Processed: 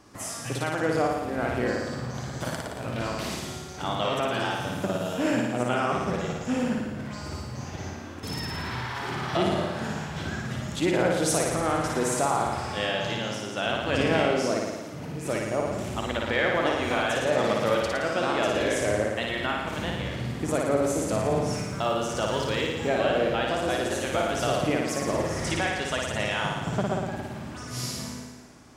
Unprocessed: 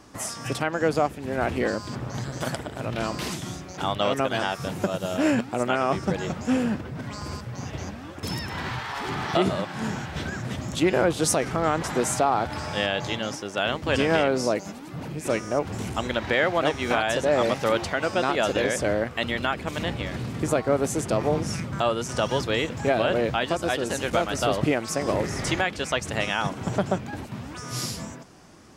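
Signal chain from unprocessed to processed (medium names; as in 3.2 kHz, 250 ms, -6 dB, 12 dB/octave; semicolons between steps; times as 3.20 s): flutter echo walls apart 9.7 m, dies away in 1.2 s; 21.54–22.88 s: companded quantiser 8-bit; trim -4.5 dB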